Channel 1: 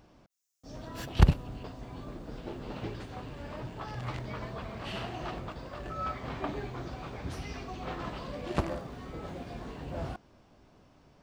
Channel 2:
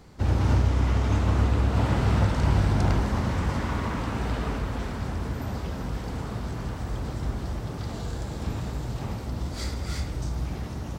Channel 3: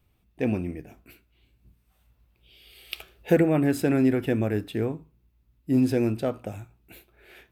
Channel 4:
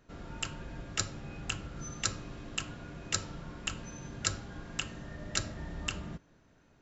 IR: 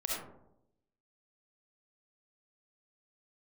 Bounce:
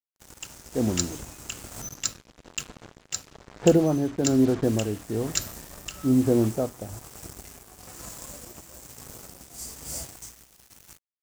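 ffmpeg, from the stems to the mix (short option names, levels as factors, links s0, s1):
-filter_complex "[0:a]afwtdn=0.00708,acompressor=threshold=0.0112:ratio=4,volume=0.531[s0];[1:a]flanger=delay=15.5:depth=6.2:speed=0.21,aexciter=amount=10.3:drive=9.6:freq=5600,acrossover=split=240[s1][s2];[s1]acompressor=threshold=0.0158:ratio=6[s3];[s3][s2]amix=inputs=2:normalize=0,volume=0.2,asplit=3[s4][s5][s6];[s4]atrim=end=1.82,asetpts=PTS-STARTPTS,afade=t=out:st=1.816:d=0.004:c=hsin[s7];[s5]atrim=start=1.82:end=4.64,asetpts=PTS-STARTPTS,volume=0[s8];[s6]atrim=start=4.64,asetpts=PTS-STARTPTS,afade=t=in:d=0.004:c=hsin[s9];[s7][s8][s9]concat=n=3:v=0:a=1[s10];[2:a]lowpass=f=1200:w=0.5412,lowpass=f=1200:w=1.3066,adelay=350,volume=1[s11];[3:a]acontrast=46,crystalizer=i=4:c=0,volume=0.237[s12];[s0][s10][s11][s12]amix=inputs=4:normalize=0,dynaudnorm=f=660:g=3:m=1.41,acrusher=bits=5:mix=0:aa=0.5,tremolo=f=1.1:d=0.48"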